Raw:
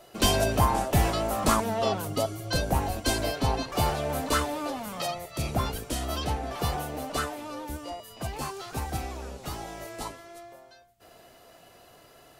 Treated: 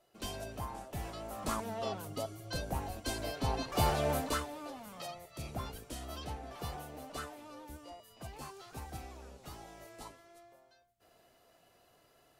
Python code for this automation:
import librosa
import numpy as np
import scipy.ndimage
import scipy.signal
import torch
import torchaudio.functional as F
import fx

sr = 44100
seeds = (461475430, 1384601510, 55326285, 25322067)

y = fx.gain(x, sr, db=fx.line((0.95, -18.5), (1.67, -11.0), (3.15, -11.0), (4.09, -1.0), (4.46, -12.5)))